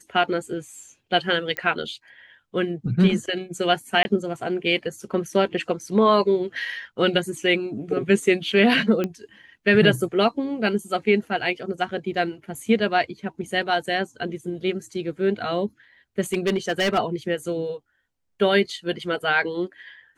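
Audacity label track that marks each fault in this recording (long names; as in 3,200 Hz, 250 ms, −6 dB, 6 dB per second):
1.570000	1.570000	click −12 dBFS
4.030000	4.050000	drop-out 20 ms
9.040000	9.040000	click −13 dBFS
16.330000	16.990000	clipping −17 dBFS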